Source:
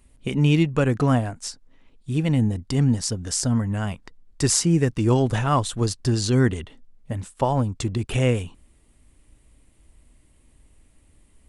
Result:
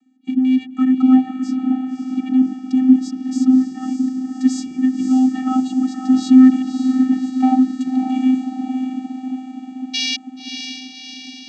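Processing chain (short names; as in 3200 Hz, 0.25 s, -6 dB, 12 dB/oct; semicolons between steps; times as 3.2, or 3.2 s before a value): 6.09–7.55 sample leveller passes 2; 9.93–10.16 painted sound noise 2300–5700 Hz -12 dBFS; diffused feedback echo 0.583 s, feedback 61%, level -7 dB; vocoder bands 16, square 258 Hz; gain +4.5 dB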